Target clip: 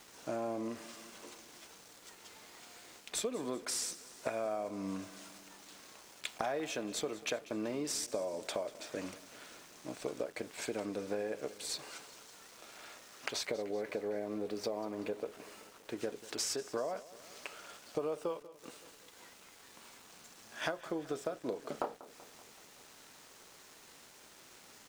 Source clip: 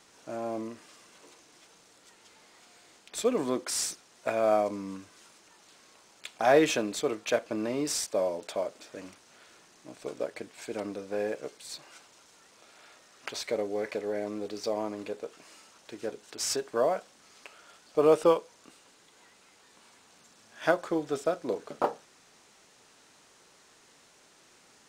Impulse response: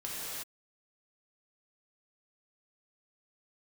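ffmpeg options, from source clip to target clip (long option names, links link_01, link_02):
-filter_complex "[0:a]asettb=1/sr,asplit=3[link_01][link_02][link_03];[link_01]atrim=end=13.454[link_04];[link_02]atrim=start=13.45:end=16.01,asetpts=PTS-STARTPTS,afade=type=in:duration=0.004:curve=qsin,afade=type=out:start_time=2.556:duration=0.004:curve=qsin,equalizer=frequency=5800:width=0.54:gain=-7[link_05];[link_03]atrim=start=16.006[link_06];[link_04][link_05]acrossfade=duration=0.004:curve1=hsin:curve2=qsin[link_07];[link_07][link_06]acrossfade=duration=0.004:curve1=qsin:curve2=hsin,acompressor=threshold=-37dB:ratio=12,aeval=exprs='val(0)*gte(abs(val(0)),0.00119)':channel_layout=same,aecho=1:1:191|382|573|764|955:0.126|0.0755|0.0453|0.0272|0.0163,volume=3.5dB"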